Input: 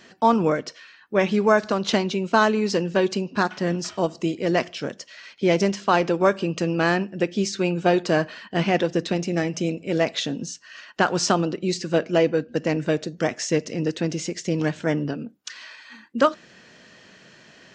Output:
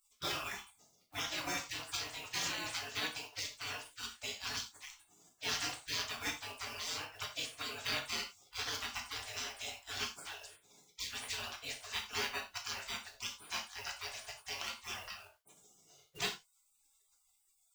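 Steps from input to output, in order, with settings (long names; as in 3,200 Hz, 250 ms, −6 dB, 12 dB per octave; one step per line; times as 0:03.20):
log-companded quantiser 8 bits
gate on every frequency bin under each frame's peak −30 dB weak
reverb whose tail is shaped and stops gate 120 ms falling, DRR 1.5 dB
level +1.5 dB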